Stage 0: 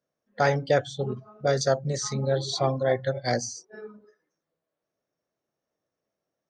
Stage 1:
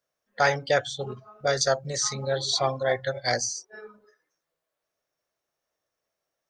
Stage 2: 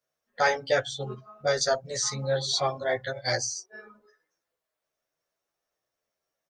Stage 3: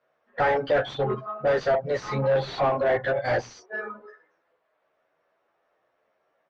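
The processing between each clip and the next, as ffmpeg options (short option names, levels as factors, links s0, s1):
-af "equalizer=f=210:t=o:w=2.7:g=-14,volume=1.88"
-filter_complex "[0:a]asplit=2[s0][s1];[s1]adelay=10.7,afreqshift=0.8[s2];[s0][s2]amix=inputs=2:normalize=1,volume=1.19"
-filter_complex "[0:a]asoftclip=type=tanh:threshold=0.0944,asplit=2[s0][s1];[s1]highpass=f=720:p=1,volume=11.2,asoftclip=type=tanh:threshold=0.0944[s2];[s0][s2]amix=inputs=2:normalize=0,lowpass=f=1000:p=1,volume=0.501,lowpass=2700,volume=2"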